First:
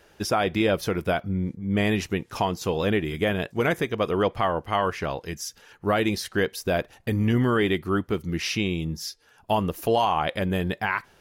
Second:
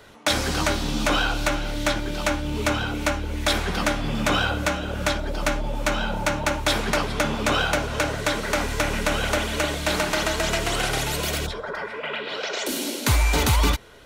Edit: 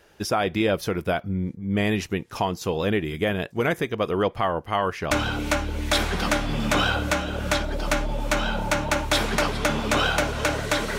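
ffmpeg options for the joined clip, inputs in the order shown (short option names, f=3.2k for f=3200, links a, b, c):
-filter_complex "[0:a]apad=whole_dur=10.98,atrim=end=10.98,atrim=end=5.112[a];[1:a]atrim=start=2.658:end=8.53[b];[a][b]acrossfade=d=0.004:c1=hsin:c2=hsin"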